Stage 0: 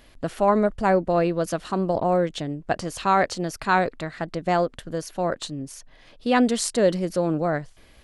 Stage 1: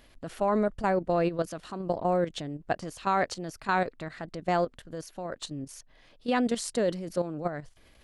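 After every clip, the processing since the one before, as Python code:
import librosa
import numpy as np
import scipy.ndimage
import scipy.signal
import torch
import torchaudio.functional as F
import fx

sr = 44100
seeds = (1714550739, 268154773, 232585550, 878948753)

y = fx.level_steps(x, sr, step_db=11)
y = F.gain(torch.from_numpy(y), -2.5).numpy()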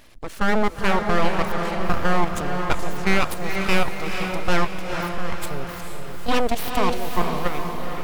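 y = np.abs(x)
y = fx.echo_diffused(y, sr, ms=458, feedback_pct=54, wet_db=-5)
y = F.gain(torch.from_numpy(y), 8.5).numpy()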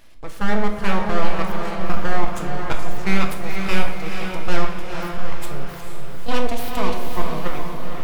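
y = fx.room_shoebox(x, sr, seeds[0], volume_m3=280.0, walls='mixed', distance_m=0.7)
y = F.gain(torch.from_numpy(y), -3.5).numpy()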